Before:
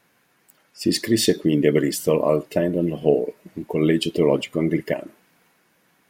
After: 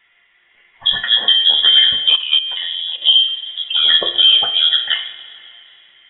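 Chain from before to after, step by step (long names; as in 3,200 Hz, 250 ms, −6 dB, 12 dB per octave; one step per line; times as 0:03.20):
coupled-rooms reverb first 0.41 s, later 2.9 s, from −15 dB, DRR 5 dB
voice inversion scrambler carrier 3,600 Hz
parametric band 2,000 Hz +12.5 dB 0.33 octaves
tuned comb filter 350 Hz, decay 0.52 s, mix 80%
automatic gain control gain up to 3 dB
0:01.04–0:01.49: high-pass filter 240 Hz 24 dB per octave
0:02.13–0:03.02: output level in coarse steps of 12 dB
boost into a limiter +14 dB
level −1 dB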